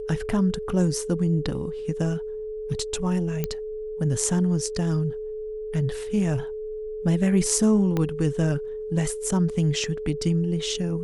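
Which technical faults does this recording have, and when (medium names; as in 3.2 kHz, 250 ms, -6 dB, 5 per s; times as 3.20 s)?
whine 430 Hz -30 dBFS
3.44 s: pop -12 dBFS
7.97 s: pop -13 dBFS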